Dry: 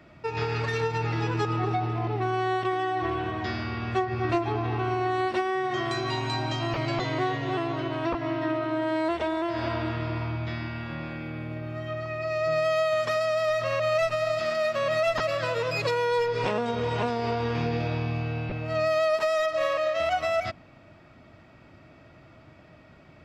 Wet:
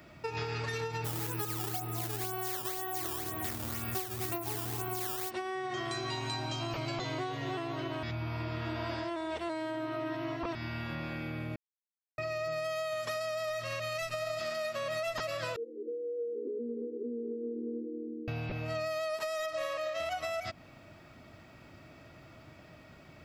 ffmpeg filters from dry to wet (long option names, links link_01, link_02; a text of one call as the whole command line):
ffmpeg -i in.wav -filter_complex "[0:a]asplit=3[link_01][link_02][link_03];[link_01]afade=type=out:start_time=1.04:duration=0.02[link_04];[link_02]acrusher=samples=12:mix=1:aa=0.000001:lfo=1:lforange=19.2:lforate=2,afade=type=in:start_time=1.04:duration=0.02,afade=type=out:start_time=5.29:duration=0.02[link_05];[link_03]afade=type=in:start_time=5.29:duration=0.02[link_06];[link_04][link_05][link_06]amix=inputs=3:normalize=0,asettb=1/sr,asplit=3[link_07][link_08][link_09];[link_07]atrim=end=6.434[link_10];[link_08]atrim=start=6.43:end=7.38,asetpts=PTS-STARTPTS,afade=type=in:duration=0.004:curve=qsin,afade=type=out:start_time=0.946:duration=0.004:curve=qsin,bandreject=frequency=1900:width=15[link_11];[link_09]atrim=start=7.376[link_12];[link_10][link_11]acrossfade=duration=0.004:curve1=hsin:curve2=qsin[link_13];[link_13][link_12]acrossfade=duration=0.004:curve1=qsin:curve2=hsin,asettb=1/sr,asplit=3[link_14][link_15][link_16];[link_14]atrim=end=13.614[link_17];[link_15]atrim=start=13.61:end=14.14,asetpts=PTS-STARTPTS,afade=type=in:duration=0.004:curve=qsin,afade=type=out:start_time=0.526:duration=0.004:curve=qsin,equalizer=frequency=750:width=0.98:gain=-7[link_18];[link_16]atrim=start=14.136[link_19];[link_17][link_18]acrossfade=duration=0.004:curve1=hsin:curve2=qsin[link_20];[link_20][link_19]acrossfade=duration=0.004:curve1=qsin:curve2=hsin,asettb=1/sr,asplit=3[link_21][link_22][link_23];[link_21]atrim=end=15.564[link_24];[link_22]atrim=start=15.56:end=18.28,asetpts=PTS-STARTPTS,afade=type=in:duration=0.004:curve=qsin,afade=type=out:start_time=2.716:duration=0.004:curve=qsin,asuperpass=centerf=330:order=20:qfactor=1.4[link_25];[link_23]atrim=start=18.276[link_26];[link_24][link_25]acrossfade=duration=0.004:curve1=hsin:curve2=qsin[link_27];[link_27][link_26]acrossfade=duration=0.004:curve1=qsin:curve2=hsin,asplit=5[link_28][link_29][link_30][link_31][link_32];[link_28]atrim=end=8.032[link_33];[link_29]atrim=start=8.028:end=10.552,asetpts=PTS-STARTPTS,areverse[link_34];[link_30]atrim=start=10.548:end=11.56,asetpts=PTS-STARTPTS,afade=type=out:start_time=1.008:duration=0.004:curve=hsin[link_35];[link_31]atrim=start=11.56:end=12.18,asetpts=PTS-STARTPTS,volume=0[link_36];[link_32]atrim=start=12.18,asetpts=PTS-STARTPTS,afade=type=in:duration=0.004:curve=hsin[link_37];[link_33][link_34]acrossfade=duration=0.004:curve1=hsin:curve2=hsin[link_38];[link_35][link_36][link_37]concat=n=3:v=0:a=1[link_39];[link_38][link_39]acrossfade=duration=0.004:curve1=hsin:curve2=hsin,aemphasis=mode=production:type=50fm,acompressor=threshold=-32dB:ratio=4,volume=-1.5dB" out.wav